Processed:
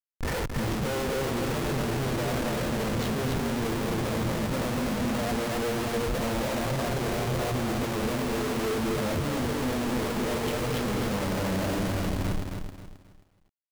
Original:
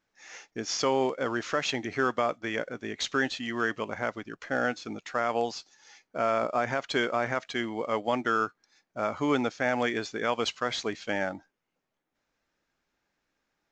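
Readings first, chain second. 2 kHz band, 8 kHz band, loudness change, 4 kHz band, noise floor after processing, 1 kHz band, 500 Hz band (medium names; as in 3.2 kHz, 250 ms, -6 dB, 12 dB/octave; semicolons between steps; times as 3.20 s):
-3.0 dB, +4.0 dB, +1.0 dB, 0.0 dB, -59 dBFS, -1.5 dB, +0.5 dB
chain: square wave that keeps the level; touch-sensitive flanger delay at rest 2.6 ms, full sweep at -20.5 dBFS; in parallel at -2 dB: peak limiter -24.5 dBFS, peak gain reduction 11.5 dB; on the sum: bass shelf 380 Hz +8.5 dB; delay 235 ms -7.5 dB; two-slope reverb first 0.44 s, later 3 s, from -17 dB, DRR -5.5 dB; reverse; compression 6:1, threshold -23 dBFS, peak gain reduction 18.5 dB; reverse; vibrato 11 Hz 30 cents; low-pass 1.5 kHz 6 dB/octave; Schmitt trigger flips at -37.5 dBFS; bass shelf 94 Hz +4.5 dB; bit-crushed delay 267 ms, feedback 35%, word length 10-bit, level -5.5 dB; trim -3 dB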